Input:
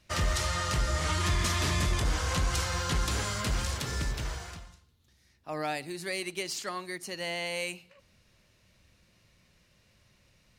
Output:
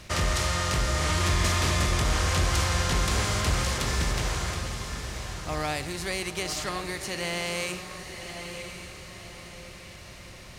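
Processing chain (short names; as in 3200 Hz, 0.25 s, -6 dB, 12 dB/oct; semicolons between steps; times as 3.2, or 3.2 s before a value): per-bin compression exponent 0.6; diffused feedback echo 1.031 s, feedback 45%, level -8 dB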